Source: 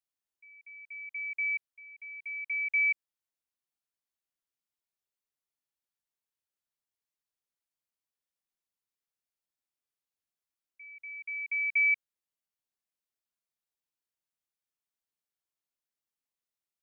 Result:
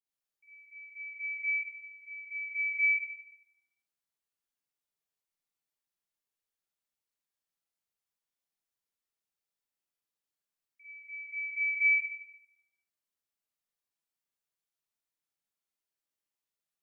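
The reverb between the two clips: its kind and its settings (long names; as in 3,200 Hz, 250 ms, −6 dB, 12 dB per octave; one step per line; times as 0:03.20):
four-comb reverb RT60 0.82 s, DRR −9 dB
level −9.5 dB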